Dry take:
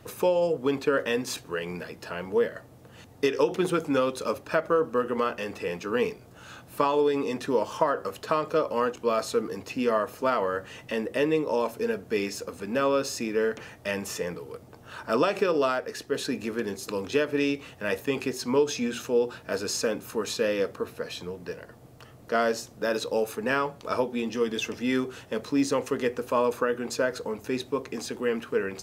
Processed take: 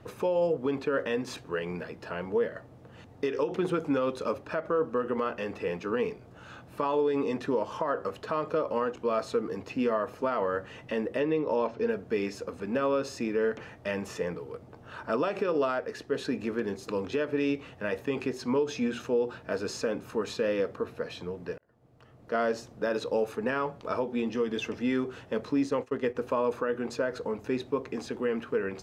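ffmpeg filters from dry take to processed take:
-filter_complex "[0:a]asettb=1/sr,asplit=3[a][b][c];[a]atrim=end=11.204[d];[b]atrim=start=11.2:end=11.89,asetpts=PTS-STARTPTS,afade=t=in:d=0.004:c=qsin,afade=t=out:st=0.686:d=0.004:c=qsin,lowpass=f=5.7k:w=0.5412,lowpass=f=5.7k:w=1.3066[e];[c]atrim=start=11.886[f];[d][e]acrossfade=d=0.004:c1=hsin:c2=qsin[g];[g][f]acrossfade=d=0.004:c1=qsin:c2=hsin,asplit=3[h][i][j];[h]afade=t=out:st=25.56:d=0.02[k];[i]agate=range=-33dB:threshold=-29dB:ratio=3:release=100:detection=peak,afade=t=in:st=25.56:d=0.02,afade=t=out:st=26.14:d=0.02[l];[j]afade=t=in:st=26.14:d=0.02[m];[k][l][m]amix=inputs=3:normalize=0,asplit=2[n][o];[n]atrim=end=21.58,asetpts=PTS-STARTPTS,afade=t=out:st=21.576:d=0.004:c=hsin[p];[o]atrim=start=21.58,asetpts=PTS-STARTPTS,afade=t=in:d=1[q];[p][q]concat=n=2:v=0:a=1,aemphasis=mode=reproduction:type=75kf,alimiter=limit=-18.5dB:level=0:latency=1:release=112"

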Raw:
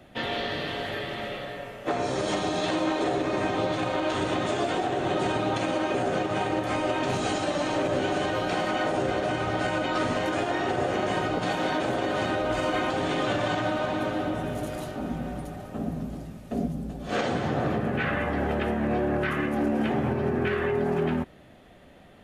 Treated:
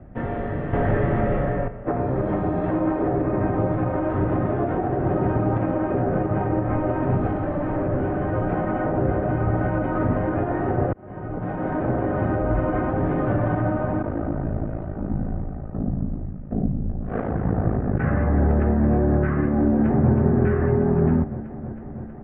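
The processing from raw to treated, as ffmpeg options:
-filter_complex "[0:a]asettb=1/sr,asplit=3[a][b][c];[a]atrim=end=0.734[d];[b]atrim=start=0.73:end=1.68,asetpts=PTS-STARTPTS,afade=t=in:d=0.004:c=qsin,afade=t=out:st=0.946:d=0.004:c=qsin,aeval=exprs='0.106*sin(PI/2*2*val(0)/0.106)':c=same[e];[c]atrim=start=1.676[f];[d][e]acrossfade=d=0.004:c1=hsin:c2=qsin[g];[g][f]acrossfade=d=0.004:c1=qsin:c2=hsin,asettb=1/sr,asplit=3[h][i][j];[h]atrim=end=7.274[k];[i]atrim=start=7.27:end=8.33,asetpts=PTS-STARTPTS,afade=t=in:d=0.004:c=qsin,afade=t=out:st=1.056:d=0.004:c=qsin,asoftclip=type=hard:threshold=-24.5dB[l];[j]atrim=start=8.326[m];[k][l]acrossfade=d=0.004:c1=hsin:c2=qsin[n];[n][m]acrossfade=d=0.004:c1=qsin:c2=hsin,asplit=3[o][p][q];[o]afade=t=out:st=14.02:d=0.02[r];[p]aeval=exprs='val(0)*sin(2*PI*27*n/s)':c=same,afade=t=in:st=14.02:d=0.02,afade=t=out:st=17.98:d=0.02[s];[q]afade=t=in:st=17.98:d=0.02[t];[r][s][t]amix=inputs=3:normalize=0,asplit=2[u][v];[v]afade=t=in:st=19.7:d=0.01,afade=t=out:st=20.12:d=0.01,aecho=0:1:320|640|960|1280|1600|1920|2240|2560|2880|3200|3520|3840:0.398107|0.318486|0.254789|0.203831|0.163065|0.130452|0.104361|0.0834891|0.0667913|0.053433|0.0427464|0.0341971[w];[u][w]amix=inputs=2:normalize=0,asplit=2[x][y];[x]atrim=end=10.93,asetpts=PTS-STARTPTS,afade=t=out:st=10.926:d=0.004:c=hsin[z];[y]atrim=start=10.93,asetpts=PTS-STARTPTS,afade=t=in:d=0.95[aa];[z][aa]concat=n=2:v=0:a=1,lowpass=f=1.8k:w=0.5412,lowpass=f=1.8k:w=1.3066,aemphasis=mode=reproduction:type=riaa"

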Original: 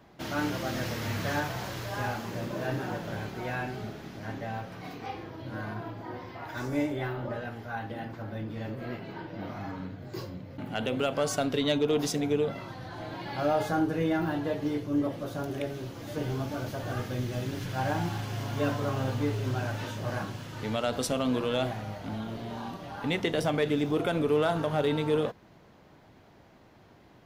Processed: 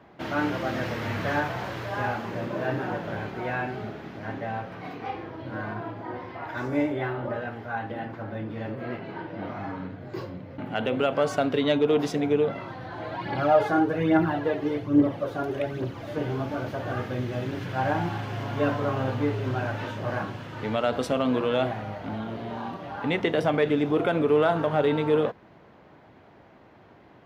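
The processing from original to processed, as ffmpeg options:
-filter_complex "[0:a]asplit=3[a][b][c];[a]afade=t=out:st=13.02:d=0.02[d];[b]aphaser=in_gain=1:out_gain=1:delay=3:decay=0.5:speed=1.2:type=triangular,afade=t=in:st=13.02:d=0.02,afade=t=out:st=16.08:d=0.02[e];[c]afade=t=in:st=16.08:d=0.02[f];[d][e][f]amix=inputs=3:normalize=0,highpass=49,bass=f=250:g=-4,treble=f=4k:g=-15,volume=5dB"

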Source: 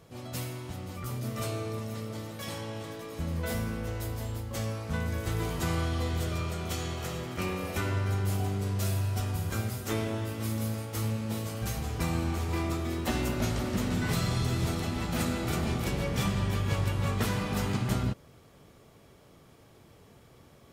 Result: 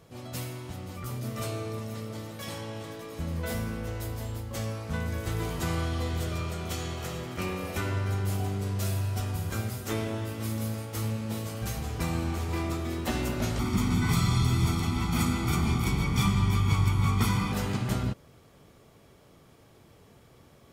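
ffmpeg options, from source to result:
-filter_complex "[0:a]asettb=1/sr,asplit=3[a][b][c];[a]atrim=end=13.594[d];[b]atrim=start=13.59:end=17.52,asetpts=PTS-STARTPTS,afade=t=in:d=0.004:c=qsin,afade=t=out:st=3.926:d=0.004:c=qsin,aecho=1:1:0.9:0.84,atrim=end_sample=173313[e];[c]atrim=start=17.516[f];[d][e]acrossfade=d=0.004:c1=hsin:c2=qsin[g];[g][f]acrossfade=d=0.004:c1=qsin:c2=hsin"

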